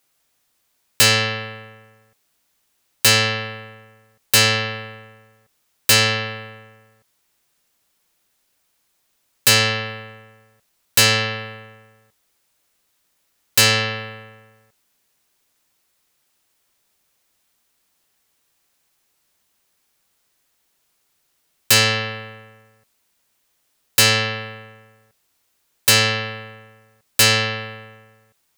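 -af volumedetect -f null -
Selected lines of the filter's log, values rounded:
mean_volume: -24.6 dB
max_volume: -8.4 dB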